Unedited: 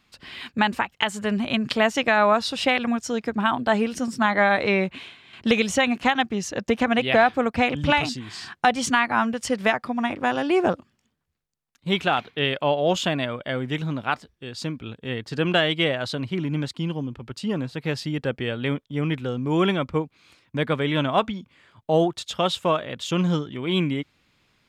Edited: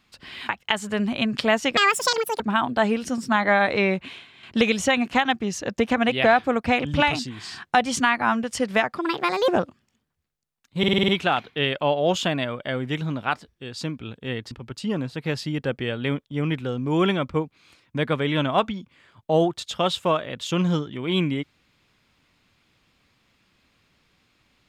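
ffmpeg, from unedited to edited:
-filter_complex "[0:a]asplit=13[s0][s1][s2][s3][s4][s5][s6][s7][s8][s9][s10][s11][s12];[s0]atrim=end=0.492[s13];[s1]atrim=start=0.808:end=2.094[s14];[s2]atrim=start=2.09:end=3.3,asetpts=PTS-STARTPTS,asetrate=84672,aresample=44100,atrim=end_sample=27792,asetpts=PTS-STARTPTS[s15];[s3]atrim=start=3.296:end=9.884[s16];[s4]atrim=start=9.88:end=10.59,asetpts=PTS-STARTPTS,asetrate=62181,aresample=44100,atrim=end_sample=22206,asetpts=PTS-STARTPTS[s17];[s5]atrim=start=10.586:end=11.942[s18];[s6]atrim=start=11.888:end=11.942[s19];[s7]atrim=start=11.888:end=11.942[s20];[s8]atrim=start=11.888:end=11.942[s21];[s9]atrim=start=11.888:end=11.942[s22];[s10]atrim=start=11.888:end=11.942[s23];[s11]atrim=start=11.888:end=15.322[s24];[s12]atrim=start=17.108[s25];[s13][s14]acrossfade=d=0.004:c1=hsin:c2=hsin[s26];[s26][s15]acrossfade=d=0.004:c1=hsin:c2=hsin[s27];[s27][s16]acrossfade=d=0.004:c1=hsin:c2=hsin[s28];[s28][s17]acrossfade=d=0.004:c1=hsin:c2=hsin[s29];[s29][s18]acrossfade=d=0.004:c1=hsin:c2=hsin[s30];[s30][s19]acrossfade=d=0.004:c1=hsin:c2=hsin[s31];[s31][s20]acrossfade=d=0.004:c1=hsin:c2=hsin[s32];[s32][s21]acrossfade=d=0.004:c1=hsin:c2=hsin[s33];[s33][s22]acrossfade=d=0.004:c1=hsin:c2=hsin[s34];[s34][s23]acrossfade=d=0.004:c1=hsin:c2=hsin[s35];[s35][s24]acrossfade=d=0.004:c1=hsin:c2=hsin[s36];[s36][s25]acrossfade=d=0.004:c1=hsin:c2=hsin"

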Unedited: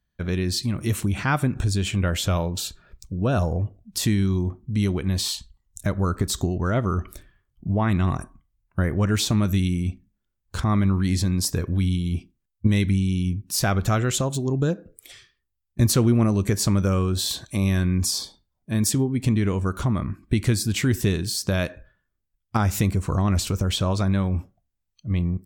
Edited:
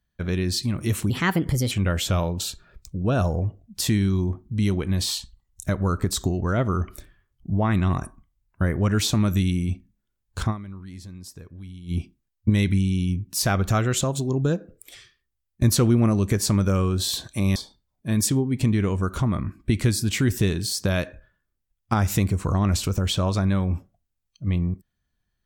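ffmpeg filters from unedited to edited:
-filter_complex "[0:a]asplit=6[s0][s1][s2][s3][s4][s5];[s0]atrim=end=1.104[s6];[s1]atrim=start=1.1:end=1.89,asetpts=PTS-STARTPTS,asetrate=56448,aresample=44100[s7];[s2]atrim=start=1.886:end=10.95,asetpts=PTS-STARTPTS,afade=t=out:st=8.784:d=0.28:c=exp:silence=0.133352[s8];[s3]atrim=start=10.95:end=11.81,asetpts=PTS-STARTPTS,volume=0.133[s9];[s4]atrim=start=11.81:end=17.732,asetpts=PTS-STARTPTS,afade=t=in:d=0.28:c=exp:silence=0.133352[s10];[s5]atrim=start=18.188[s11];[s6][s7]acrossfade=d=0.004:c1=hsin:c2=hsin[s12];[s8][s9][s10]concat=n=3:v=0:a=1[s13];[s12][s13]acrossfade=d=0.004:c1=hsin:c2=hsin[s14];[s14][s11]acrossfade=d=0.004:c1=hsin:c2=hsin"

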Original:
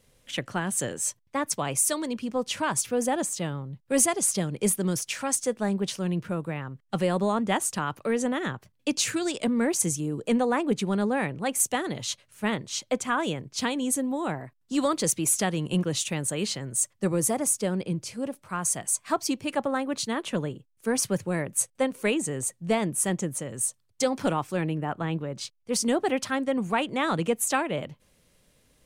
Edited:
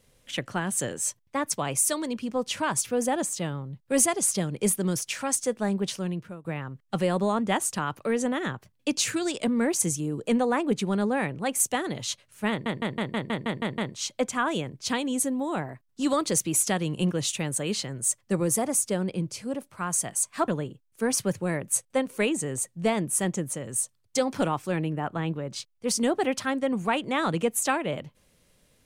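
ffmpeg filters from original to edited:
-filter_complex "[0:a]asplit=11[s0][s1][s2][s3][s4][s5][s6][s7][s8][s9][s10];[s0]atrim=end=6.45,asetpts=PTS-STARTPTS,afade=t=out:st=5.95:d=0.5:silence=0.105925[s11];[s1]atrim=start=6.45:end=12.662,asetpts=PTS-STARTPTS,afade=t=in:d=0.004:c=hsin:silence=0.105925[s12];[s2]atrim=start=12.498:end=12.662[s13];[s3]atrim=start=12.498:end=12.662[s14];[s4]atrim=start=12.498:end=12.662[s15];[s5]atrim=start=12.498:end=12.662[s16];[s6]atrim=start=12.498:end=12.662[s17];[s7]atrim=start=12.498:end=12.662[s18];[s8]atrim=start=12.498:end=12.662[s19];[s9]atrim=start=12.498:end=19.202[s20];[s10]atrim=start=20.328[s21];[s11][s12]concat=n=2:v=0:a=1[s22];[s22][s13]acrossfade=d=0.004:c1=hsin:c2=hsin[s23];[s23][s14]acrossfade=d=0.004:c1=hsin:c2=hsin[s24];[s24][s15]acrossfade=d=0.004:c1=hsin:c2=hsin[s25];[s25][s16]acrossfade=d=0.004:c1=hsin:c2=hsin[s26];[s26][s17]acrossfade=d=0.004:c1=hsin:c2=hsin[s27];[s27][s18]acrossfade=d=0.004:c1=hsin:c2=hsin[s28];[s28][s19]acrossfade=d=0.004:c1=hsin:c2=hsin[s29];[s29][s20]acrossfade=d=0.004:c1=hsin:c2=hsin[s30];[s30][s21]acrossfade=d=0.004:c1=hsin:c2=hsin"

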